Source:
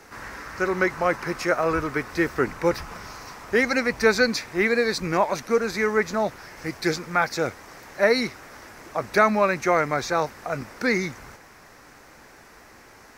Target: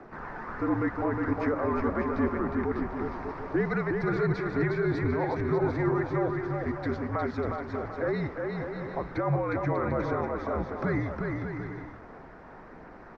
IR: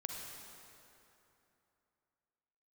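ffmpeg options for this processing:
-filter_complex "[0:a]lowpass=1600,equalizer=frequency=490:width=0.61:gain=4,asplit=2[link_01][link_02];[link_02]acompressor=threshold=-28dB:ratio=6,volume=1dB[link_03];[link_01][link_03]amix=inputs=2:normalize=0,alimiter=limit=-12.5dB:level=0:latency=1:release=19,aphaser=in_gain=1:out_gain=1:delay=1.2:decay=0.28:speed=1.4:type=triangular,asetrate=42845,aresample=44100,atempo=1.0293,afreqshift=-64,asplit=2[link_04][link_05];[link_05]aecho=0:1:360|594|746.1|845|909.2:0.631|0.398|0.251|0.158|0.1[link_06];[link_04][link_06]amix=inputs=2:normalize=0,volume=-8dB"

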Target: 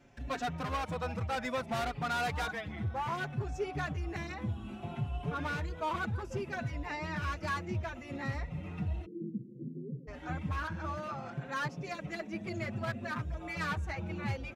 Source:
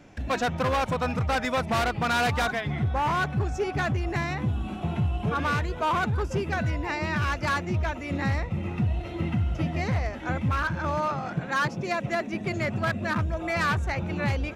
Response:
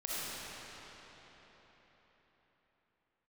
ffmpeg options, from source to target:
-filter_complex "[0:a]asplit=3[link_01][link_02][link_03];[link_01]afade=type=out:start_time=9.04:duration=0.02[link_04];[link_02]asuperpass=centerf=250:order=20:qfactor=0.72,afade=type=in:start_time=9.04:duration=0.02,afade=type=out:start_time=10.07:duration=0.02[link_05];[link_03]afade=type=in:start_time=10.07:duration=0.02[link_06];[link_04][link_05][link_06]amix=inputs=3:normalize=0,asplit=2[link_07][link_08];[link_08]adelay=5.4,afreqshift=0.62[link_09];[link_07][link_09]amix=inputs=2:normalize=1,volume=-6.5dB"

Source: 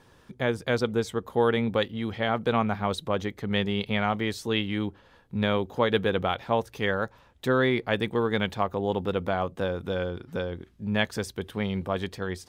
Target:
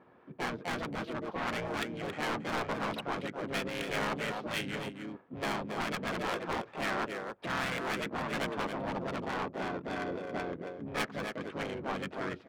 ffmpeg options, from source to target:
ffmpeg -i in.wav -filter_complex "[0:a]asplit=4[link_01][link_02][link_03][link_04];[link_02]asetrate=29433,aresample=44100,atempo=1.49831,volume=-10dB[link_05];[link_03]asetrate=33038,aresample=44100,atempo=1.33484,volume=-5dB[link_06];[link_04]asetrate=58866,aresample=44100,atempo=0.749154,volume=-6dB[link_07];[link_01][link_05][link_06][link_07]amix=inputs=4:normalize=0,highpass=230,lowpass=3200,volume=18.5dB,asoftclip=hard,volume=-18.5dB,adynamicsmooth=sensitivity=7:basefreq=1600,aecho=1:1:274:0.266,asoftclip=type=tanh:threshold=-24.5dB,afftfilt=real='re*lt(hypot(re,im),0.158)':imag='im*lt(hypot(re,im),0.158)':win_size=1024:overlap=0.75,volume=-1dB" out.wav

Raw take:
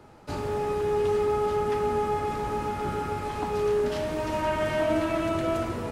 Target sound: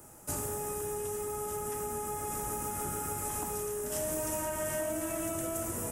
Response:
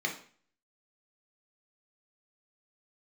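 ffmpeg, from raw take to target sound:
-filter_complex "[0:a]acompressor=threshold=-29dB:ratio=6,aexciter=amount=8.5:drive=9.6:freq=6500,asplit=2[link_01][link_02];[1:a]atrim=start_sample=2205[link_03];[link_02][link_03]afir=irnorm=-1:irlink=0,volume=-19dB[link_04];[link_01][link_04]amix=inputs=2:normalize=0,volume=-4.5dB"

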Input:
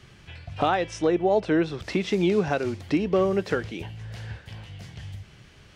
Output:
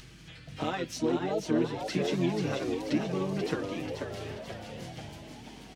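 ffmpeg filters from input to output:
ffmpeg -i in.wav -filter_complex "[0:a]highpass=170,equalizer=frequency=1000:width=0.46:gain=-11,aecho=1:1:6.3:0.77,acompressor=threshold=-36dB:ratio=1.5,asplit=3[link_01][link_02][link_03];[link_02]asetrate=33038,aresample=44100,atempo=1.33484,volume=-5dB[link_04];[link_03]asetrate=88200,aresample=44100,atempo=0.5,volume=-17dB[link_05];[link_01][link_04][link_05]amix=inputs=3:normalize=0,aeval=exprs='val(0)+0.00126*(sin(2*PI*50*n/s)+sin(2*PI*2*50*n/s)/2+sin(2*PI*3*50*n/s)/3+sin(2*PI*4*50*n/s)/4+sin(2*PI*5*50*n/s)/5)':channel_layout=same,acompressor=mode=upward:threshold=-46dB:ratio=2.5,asplit=7[link_06][link_07][link_08][link_09][link_10][link_11][link_12];[link_07]adelay=486,afreqshift=110,volume=-6dB[link_13];[link_08]adelay=972,afreqshift=220,volume=-11.8dB[link_14];[link_09]adelay=1458,afreqshift=330,volume=-17.7dB[link_15];[link_10]adelay=1944,afreqshift=440,volume=-23.5dB[link_16];[link_11]adelay=2430,afreqshift=550,volume=-29.4dB[link_17];[link_12]adelay=2916,afreqshift=660,volume=-35.2dB[link_18];[link_06][link_13][link_14][link_15][link_16][link_17][link_18]amix=inputs=7:normalize=0" out.wav

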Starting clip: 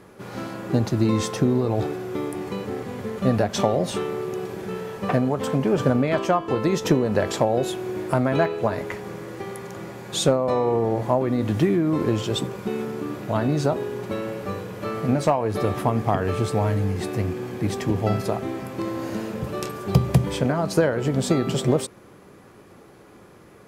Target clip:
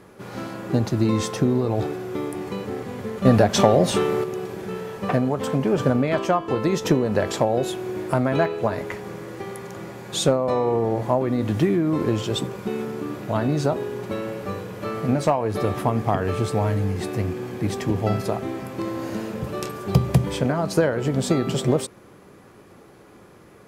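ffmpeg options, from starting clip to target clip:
ffmpeg -i in.wav -filter_complex "[0:a]asettb=1/sr,asplit=3[link_01][link_02][link_03];[link_01]atrim=end=3.254[link_04];[link_02]atrim=start=3.25:end=4.24,asetpts=PTS-STARTPTS,afade=type=in:duration=0.004:curve=qsin,afade=type=out:start_time=0.986:duration=0.004:curve=qsin,acontrast=45[link_05];[link_03]atrim=start=4.236[link_06];[link_04][link_05]acrossfade=duration=0.004:curve1=hsin:curve2=qsin[link_07];[link_07][link_06]acrossfade=duration=0.004:curve1=qsin:curve2=hsin" out.wav

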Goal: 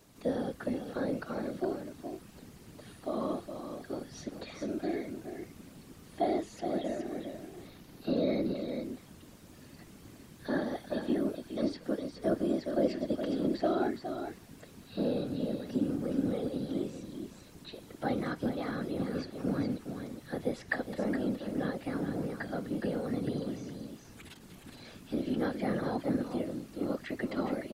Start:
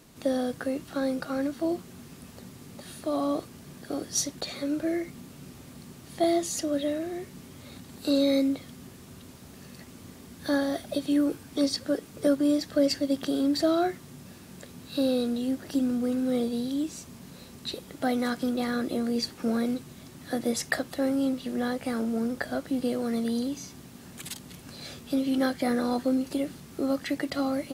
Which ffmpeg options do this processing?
ffmpeg -i in.wav -filter_complex "[0:a]asettb=1/sr,asplit=3[link_01][link_02][link_03];[link_01]atrim=end=7.674[link_04];[link_02]atrim=start=7.67:end=8.56,asetpts=PTS-STARTPTS,afade=type=in:duration=0.004:curve=qsin,afade=type=out:start_time=0.886:duration=0.004:curve=qsin,equalizer=frequency=8000:width_type=o:width=0.38:gain=-11.5[link_05];[link_03]atrim=start=8.556[link_06];[link_04][link_05]acrossfade=duration=0.004:curve1=hsin:curve2=qsin[link_07];[link_07][link_06]acrossfade=duration=0.004:curve1=qsin:curve2=hsin,aecho=1:1:417:0.398,afftfilt=real='hypot(re,im)*cos(2*PI*random(0))':imag='hypot(re,im)*sin(2*PI*random(1))':win_size=512:overlap=0.75,acrossover=split=3200[link_08][link_09];[link_09]acompressor=threshold=-58dB:ratio=4:attack=1:release=60[link_10];[link_08][link_10]amix=inputs=2:normalize=0" out.wav

